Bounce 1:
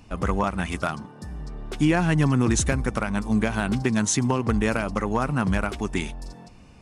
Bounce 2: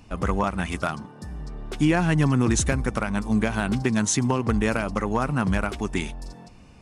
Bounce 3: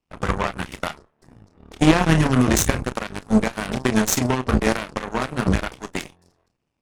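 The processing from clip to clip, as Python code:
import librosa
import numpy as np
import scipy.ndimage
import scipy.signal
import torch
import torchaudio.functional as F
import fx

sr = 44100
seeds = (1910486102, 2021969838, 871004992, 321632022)

y1 = x
y2 = fx.room_early_taps(y1, sr, ms=(32, 55), db=(-6.0, -18.0))
y2 = fx.cheby_harmonics(y2, sr, harmonics=(3, 4, 7), levels_db=(-40, -14, -17), full_scale_db=-7.5)
y2 = y2 * 10.0 ** (4.0 / 20.0)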